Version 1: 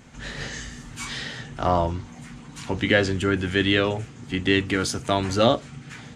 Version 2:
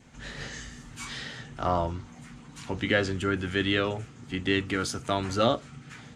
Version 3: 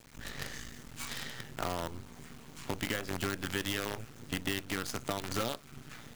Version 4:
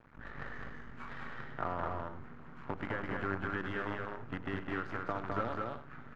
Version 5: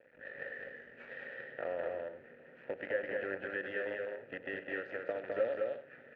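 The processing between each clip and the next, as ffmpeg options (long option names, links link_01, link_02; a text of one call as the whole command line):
ffmpeg -i in.wav -af "adynamicequalizer=threshold=0.00501:dfrequency=1300:dqfactor=6.4:tfrequency=1300:tqfactor=6.4:attack=5:release=100:ratio=0.375:range=3:mode=boostabove:tftype=bell,volume=-5.5dB" out.wav
ffmpeg -i in.wav -af "acompressor=threshold=-31dB:ratio=10,acrusher=bits=6:dc=4:mix=0:aa=0.000001" out.wav
ffmpeg -i in.wav -filter_complex "[0:a]lowpass=frequency=1400:width_type=q:width=1.9,asplit=2[link_01][link_02];[link_02]aecho=0:1:102|208|262|289:0.188|0.708|0.211|0.178[link_03];[link_01][link_03]amix=inputs=2:normalize=0,volume=-4dB" out.wav
ffmpeg -i in.wav -filter_complex "[0:a]asplit=3[link_01][link_02][link_03];[link_01]bandpass=frequency=530:width_type=q:width=8,volume=0dB[link_04];[link_02]bandpass=frequency=1840:width_type=q:width=8,volume=-6dB[link_05];[link_03]bandpass=frequency=2480:width_type=q:width=8,volume=-9dB[link_06];[link_04][link_05][link_06]amix=inputs=3:normalize=0,volume=11.5dB" out.wav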